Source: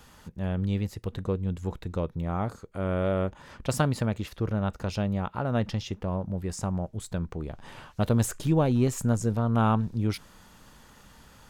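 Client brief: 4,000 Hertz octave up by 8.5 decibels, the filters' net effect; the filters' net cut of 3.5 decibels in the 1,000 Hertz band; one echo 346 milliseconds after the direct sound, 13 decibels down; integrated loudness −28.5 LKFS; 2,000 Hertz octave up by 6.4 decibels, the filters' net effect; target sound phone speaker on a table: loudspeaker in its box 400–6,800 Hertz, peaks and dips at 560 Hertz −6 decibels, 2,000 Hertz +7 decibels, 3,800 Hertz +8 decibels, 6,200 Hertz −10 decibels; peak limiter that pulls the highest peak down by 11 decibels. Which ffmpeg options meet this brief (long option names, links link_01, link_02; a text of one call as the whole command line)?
ffmpeg -i in.wav -af "equalizer=frequency=1000:width_type=o:gain=-7,equalizer=frequency=2000:width_type=o:gain=7,equalizer=frequency=4000:width_type=o:gain=4,alimiter=limit=-21dB:level=0:latency=1,highpass=frequency=400:width=0.5412,highpass=frequency=400:width=1.3066,equalizer=frequency=560:width_type=q:width=4:gain=-6,equalizer=frequency=2000:width_type=q:width=4:gain=7,equalizer=frequency=3800:width_type=q:width=4:gain=8,equalizer=frequency=6200:width_type=q:width=4:gain=-10,lowpass=frequency=6800:width=0.5412,lowpass=frequency=6800:width=1.3066,aecho=1:1:346:0.224,volume=10dB" out.wav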